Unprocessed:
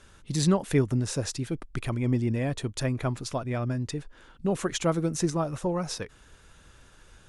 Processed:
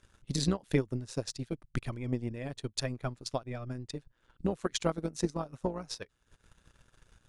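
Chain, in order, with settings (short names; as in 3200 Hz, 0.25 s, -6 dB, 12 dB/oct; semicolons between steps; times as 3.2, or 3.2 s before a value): dynamic EQ 4300 Hz, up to +6 dB, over -50 dBFS, Q 1.6; transient shaper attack +9 dB, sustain -11 dB; AM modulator 120 Hz, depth 45%; gain -7.5 dB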